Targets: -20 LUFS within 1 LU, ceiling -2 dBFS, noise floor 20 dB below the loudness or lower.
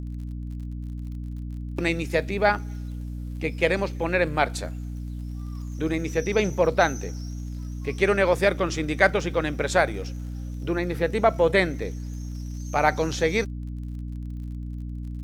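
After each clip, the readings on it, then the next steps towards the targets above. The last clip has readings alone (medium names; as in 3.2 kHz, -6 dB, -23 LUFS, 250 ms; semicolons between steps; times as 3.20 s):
tick rate 41 per s; hum 60 Hz; highest harmonic 300 Hz; hum level -30 dBFS; loudness -26.0 LUFS; peak level -5.0 dBFS; loudness target -20.0 LUFS
-> de-click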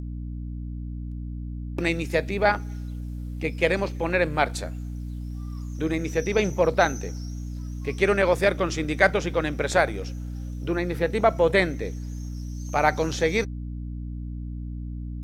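tick rate 0.26 per s; hum 60 Hz; highest harmonic 300 Hz; hum level -30 dBFS
-> hum notches 60/120/180/240/300 Hz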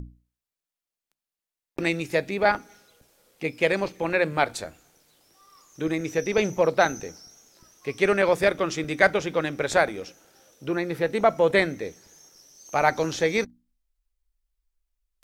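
hum not found; loudness -24.5 LUFS; peak level -4.5 dBFS; loudness target -20.0 LUFS
-> trim +4.5 dB; peak limiter -2 dBFS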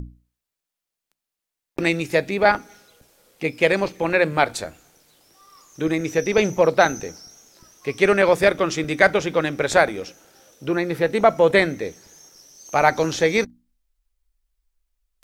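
loudness -20.0 LUFS; peak level -2.0 dBFS; noise floor -85 dBFS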